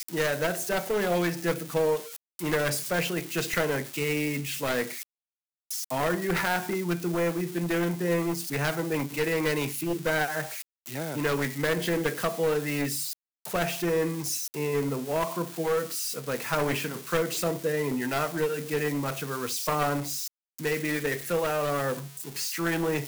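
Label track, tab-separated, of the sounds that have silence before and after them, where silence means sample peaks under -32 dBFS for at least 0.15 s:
2.390000	5.030000	sound
5.710000	10.620000	sound
10.860000	13.130000	sound
13.450000	20.280000	sound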